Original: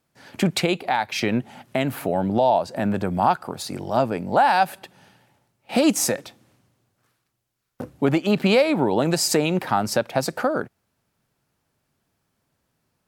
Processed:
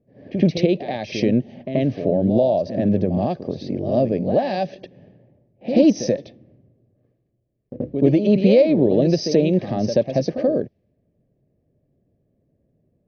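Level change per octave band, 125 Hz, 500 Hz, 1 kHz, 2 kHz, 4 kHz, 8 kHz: +5.0 dB, +4.0 dB, -9.0 dB, -9.5 dB, -5.5 dB, -11.5 dB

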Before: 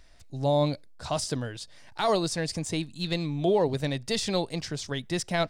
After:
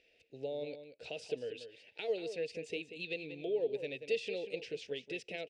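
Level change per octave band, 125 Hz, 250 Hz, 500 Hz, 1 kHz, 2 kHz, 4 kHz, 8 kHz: -24.5 dB, -16.5 dB, -8.5 dB, -24.0 dB, -7.5 dB, -13.5 dB, -22.5 dB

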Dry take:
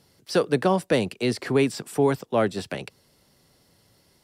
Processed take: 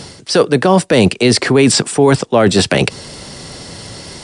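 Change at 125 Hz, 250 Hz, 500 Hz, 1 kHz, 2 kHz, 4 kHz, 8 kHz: +13.5 dB, +12.5 dB, +11.0 dB, +11.0 dB, +13.5 dB, +17.5 dB, +20.5 dB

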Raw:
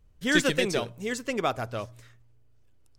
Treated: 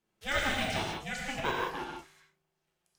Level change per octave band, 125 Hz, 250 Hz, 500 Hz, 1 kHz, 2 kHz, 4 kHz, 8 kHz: -5.5 dB, -10.5 dB, -9.0 dB, 0.0 dB, -4.0 dB, -3.5 dB, -7.5 dB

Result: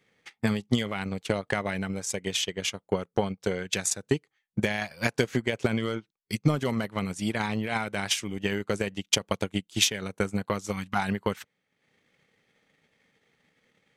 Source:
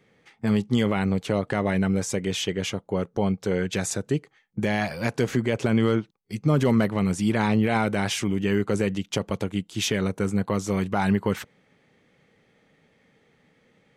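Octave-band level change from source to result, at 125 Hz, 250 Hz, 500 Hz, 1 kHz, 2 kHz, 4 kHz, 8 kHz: -6.0 dB, -6.5 dB, -4.5 dB, -3.5 dB, -0.5 dB, +2.5 dB, +2.5 dB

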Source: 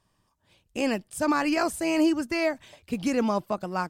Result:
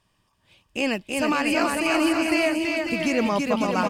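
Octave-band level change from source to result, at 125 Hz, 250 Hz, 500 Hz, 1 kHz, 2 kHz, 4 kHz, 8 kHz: +3.0 dB, +2.5 dB, +3.5 dB, +3.5 dB, +7.0 dB, +7.5 dB, +3.5 dB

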